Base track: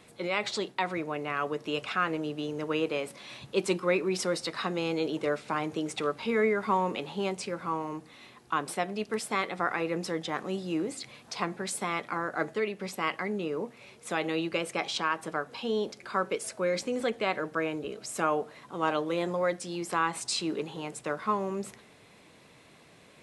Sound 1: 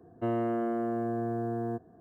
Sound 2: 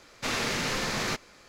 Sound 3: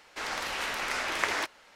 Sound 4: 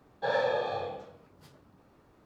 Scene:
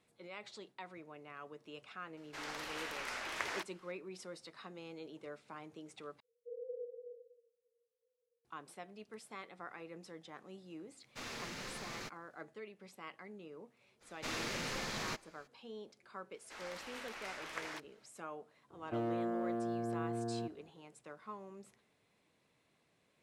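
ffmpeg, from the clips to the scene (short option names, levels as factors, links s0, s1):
-filter_complex "[3:a]asplit=2[s0][s1];[2:a]asplit=2[s2][s3];[0:a]volume=0.112[s4];[4:a]asuperpass=centerf=480:order=20:qfactor=7.6[s5];[s2]aeval=exprs='sgn(val(0))*max(abs(val(0))-0.00237,0)':c=same[s6];[1:a]asoftclip=type=hard:threshold=0.0596[s7];[s4]asplit=2[s8][s9];[s8]atrim=end=6.204[s10];[s5]atrim=end=2.25,asetpts=PTS-STARTPTS,volume=0.335[s11];[s9]atrim=start=8.446[s12];[s0]atrim=end=1.75,asetpts=PTS-STARTPTS,volume=0.299,afade=t=in:d=0.004:c=hsin,afade=t=out:st=1.746:d=0.004:c=hsin,adelay=2170[s13];[s6]atrim=end=1.48,asetpts=PTS-STARTPTS,volume=0.168,afade=t=in:d=0.004:c=hsin,afade=t=out:st=1.476:d=0.004:c=hsin,adelay=10930[s14];[s3]atrim=end=1.48,asetpts=PTS-STARTPTS,volume=0.299,afade=t=in:d=0.02,afade=t=out:st=1.46:d=0.02,adelay=14000[s15];[s1]atrim=end=1.75,asetpts=PTS-STARTPTS,volume=0.168,afade=t=in:d=0.004:c=hsin,afade=t=out:st=1.746:d=0.004:c=hsin,adelay=16340[s16];[s7]atrim=end=2,asetpts=PTS-STARTPTS,volume=0.473,afade=t=in:d=0.004:c=hsin,afade=t=out:st=1.996:d=0.004:c=hsin,adelay=18700[s17];[s10][s11]acrossfade=d=0.004:c1=hsin:c2=hsin[s18];[s18][s12]acrossfade=d=0.004:c1=hsin:c2=hsin[s19];[s19][s13][s14][s15][s16][s17]amix=inputs=6:normalize=0"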